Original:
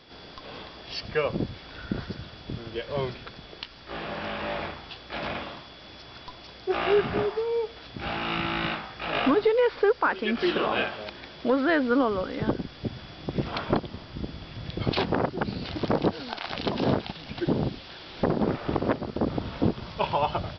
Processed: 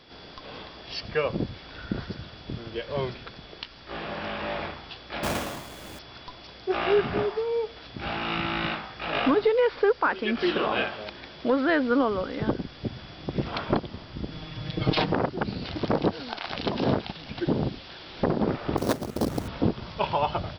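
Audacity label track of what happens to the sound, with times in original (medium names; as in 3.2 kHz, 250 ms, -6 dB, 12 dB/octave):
5.230000	5.990000	square wave that keeps the level
14.310000	15.130000	comb 6.5 ms, depth 88%
18.770000	19.480000	sample-rate reducer 5.1 kHz, jitter 20%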